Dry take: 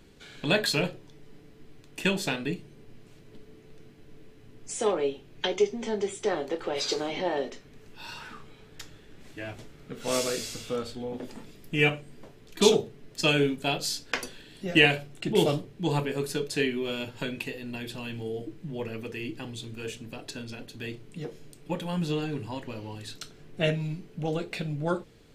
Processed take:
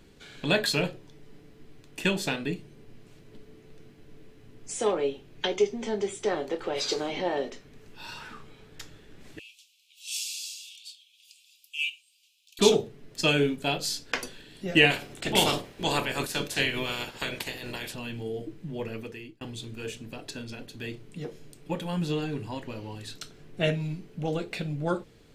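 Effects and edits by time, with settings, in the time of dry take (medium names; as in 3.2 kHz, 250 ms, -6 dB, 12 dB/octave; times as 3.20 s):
9.39–12.59 s: steep high-pass 2.5 kHz 96 dB/octave
14.90–17.93 s: spectral peaks clipped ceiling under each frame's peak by 20 dB
18.97–19.41 s: fade out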